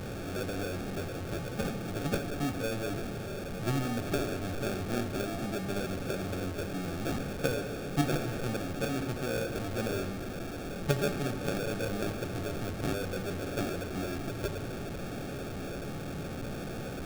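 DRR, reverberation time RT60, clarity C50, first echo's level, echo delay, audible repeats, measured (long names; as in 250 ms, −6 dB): 7.5 dB, 1.8 s, 10.0 dB, no echo audible, no echo audible, no echo audible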